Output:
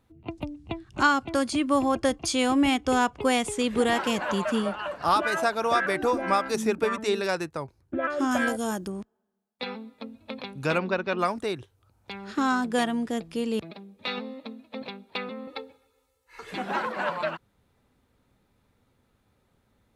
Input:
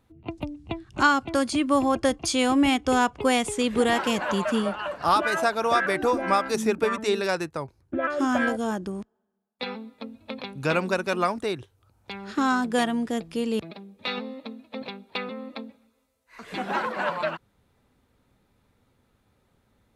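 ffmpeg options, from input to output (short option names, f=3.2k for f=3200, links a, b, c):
-filter_complex "[0:a]asettb=1/sr,asplit=3[a][b][c];[a]atrim=end=8.314[d];[b]atrim=start=8.31:end=8.88,asetpts=PTS-STARTPTS,afade=t=in:d=0.004:c=qsin,afade=t=out:st=0.566:d=0.004:c=qsin,aemphasis=mode=production:type=50fm[e];[c]atrim=start=8.876[f];[d][e]acrossfade=d=0.004:c1=hsin:c2=qsin[g];[g][f]acrossfade=d=0.004:c1=qsin:c2=hsin,asettb=1/sr,asplit=3[h][i][j];[h]atrim=end=10.784[k];[i]atrim=start=10.78:end=11.19,asetpts=PTS-STARTPTS,afade=t=in:d=0.004:c=qsin,afade=t=out:st=0.406:d=0.004:c=qsin,lowpass=f=4.2k:w=0.5412,lowpass=f=4.2k:w=1.3066[l];[j]atrim=start=11.186[m];[k][l]acrossfade=d=0.004:c1=hsin:c2=qsin[n];[n][m]acrossfade=d=0.004:c1=qsin:c2=hsin,asettb=1/sr,asplit=3[o][p][q];[o]atrim=end=15.474[r];[p]atrim=start=15.47:end=16.51,asetpts=PTS-STARTPTS,afade=t=in:d=0.004:c=qsin,afade=t=out:st=1.036:d=0.004:c=qsin,aecho=1:1:2.3:0.99,atrim=end_sample=45864[s];[q]atrim=start=16.506[t];[r][s]acrossfade=d=0.004:c1=hsin:c2=qsin[u];[u][t]acrossfade=d=0.004:c1=qsin:c2=hsin,volume=-1.5dB"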